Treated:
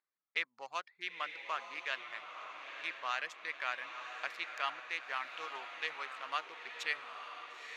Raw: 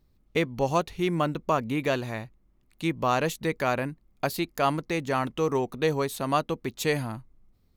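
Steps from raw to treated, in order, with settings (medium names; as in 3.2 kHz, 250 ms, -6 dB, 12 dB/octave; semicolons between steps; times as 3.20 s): local Wiener filter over 15 samples; ladder band-pass 2.5 kHz, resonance 20%; reverb removal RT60 0.54 s; echo that smears into a reverb 948 ms, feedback 53%, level -7 dB; trim +8 dB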